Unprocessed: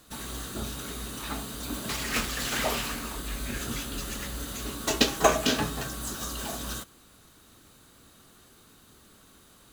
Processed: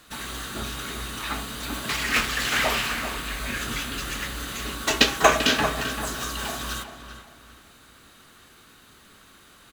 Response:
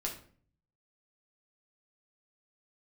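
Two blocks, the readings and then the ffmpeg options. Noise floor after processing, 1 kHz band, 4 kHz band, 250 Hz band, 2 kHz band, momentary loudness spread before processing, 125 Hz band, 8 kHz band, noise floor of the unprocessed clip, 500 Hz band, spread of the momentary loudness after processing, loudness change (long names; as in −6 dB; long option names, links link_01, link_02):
−53 dBFS, +5.5 dB, +6.0 dB, +1.0 dB, +9.0 dB, 12 LU, +1.5 dB, +2.0 dB, −57 dBFS, +2.5 dB, 13 LU, +5.0 dB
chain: -filter_complex "[0:a]equalizer=frequency=2000:width_type=o:width=2.2:gain=9,asplit=2[link_01][link_02];[link_02]adelay=391,lowpass=frequency=2700:poles=1,volume=-9dB,asplit=2[link_03][link_04];[link_04]adelay=391,lowpass=frequency=2700:poles=1,volume=0.34,asplit=2[link_05][link_06];[link_06]adelay=391,lowpass=frequency=2700:poles=1,volume=0.34,asplit=2[link_07][link_08];[link_08]adelay=391,lowpass=frequency=2700:poles=1,volume=0.34[link_09];[link_03][link_05][link_07][link_09]amix=inputs=4:normalize=0[link_10];[link_01][link_10]amix=inputs=2:normalize=0"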